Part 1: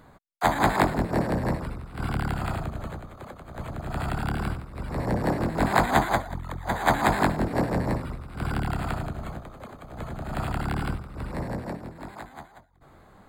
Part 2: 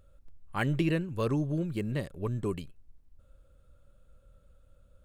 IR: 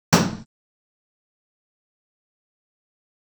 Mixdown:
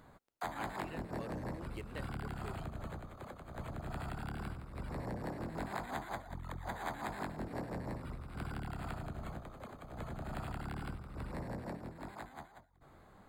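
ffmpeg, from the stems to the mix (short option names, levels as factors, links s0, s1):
-filter_complex "[0:a]volume=0.447[s0];[1:a]highpass=470,volume=0.531[s1];[s0][s1]amix=inputs=2:normalize=0,acompressor=threshold=0.0126:ratio=6"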